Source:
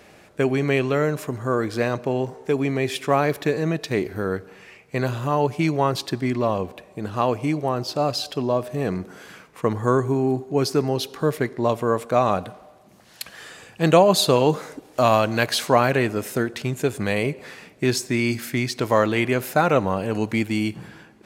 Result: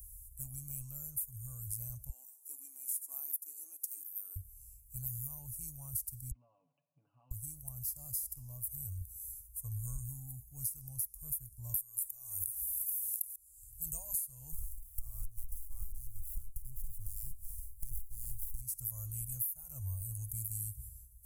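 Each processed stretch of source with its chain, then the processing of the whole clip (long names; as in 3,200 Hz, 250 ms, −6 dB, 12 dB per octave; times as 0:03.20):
0:02.09–0:04.36: linear-phase brick-wall high-pass 270 Hz + parametric band 560 Hz −7.5 dB 0.35 octaves
0:06.31–0:07.31: comb filter 7.1 ms, depth 76% + downward compressor 3 to 1, threshold −25 dBFS + linear-phase brick-wall band-pass 150–3,100 Hz
0:11.74–0:13.36: spectral tilt +3.5 dB per octave + envelope flattener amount 70%
0:14.52–0:18.61: parametric band 1,300 Hz +13.5 dB 0.32 octaves + windowed peak hold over 9 samples
whole clip: inverse Chebyshev band-stop filter 180–4,000 Hz, stop band 60 dB; downward compressor 20 to 1, threshold −51 dBFS; level +17.5 dB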